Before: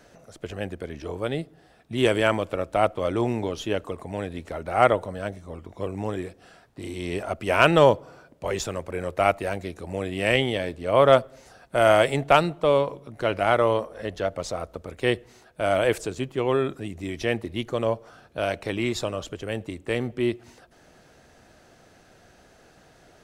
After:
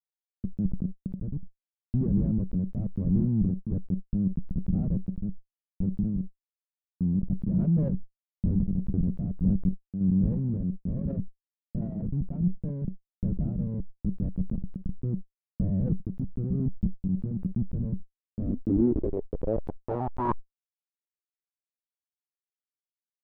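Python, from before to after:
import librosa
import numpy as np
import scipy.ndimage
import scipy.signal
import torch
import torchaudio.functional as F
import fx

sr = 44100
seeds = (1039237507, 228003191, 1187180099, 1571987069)

y = fx.schmitt(x, sr, flips_db=-24.0)
y = fx.tremolo_random(y, sr, seeds[0], hz=3.5, depth_pct=55)
y = fx.filter_sweep_lowpass(y, sr, from_hz=190.0, to_hz=3900.0, start_s=18.23, end_s=21.94, q=4.9)
y = fx.sustainer(y, sr, db_per_s=47.0)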